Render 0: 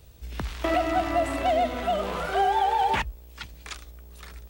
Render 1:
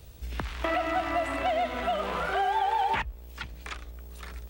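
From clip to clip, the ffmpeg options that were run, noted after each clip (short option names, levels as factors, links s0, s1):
-filter_complex "[0:a]acrossover=split=880|3100[s0][s1][s2];[s0]acompressor=threshold=0.0178:ratio=4[s3];[s1]acompressor=threshold=0.0316:ratio=4[s4];[s2]acompressor=threshold=0.002:ratio=4[s5];[s3][s4][s5]amix=inputs=3:normalize=0,volume=1.33"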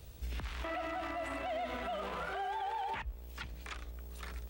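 -af "alimiter=level_in=1.58:limit=0.0631:level=0:latency=1:release=66,volume=0.631,volume=0.708"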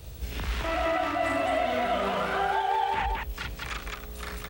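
-af "aecho=1:1:40.82|212.8:0.794|0.891,volume=2.37"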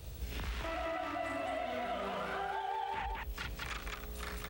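-af "acompressor=threshold=0.0224:ratio=3,volume=0.631"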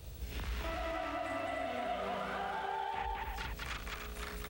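-af "aecho=1:1:296:0.596,volume=0.841"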